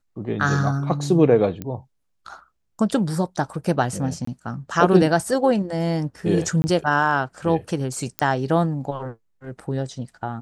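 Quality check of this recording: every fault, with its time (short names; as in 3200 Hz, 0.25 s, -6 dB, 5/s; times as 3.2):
1.62 pop -16 dBFS
4.25–4.27 gap 24 ms
6.62–6.64 gap 20 ms
8.19 pop -7 dBFS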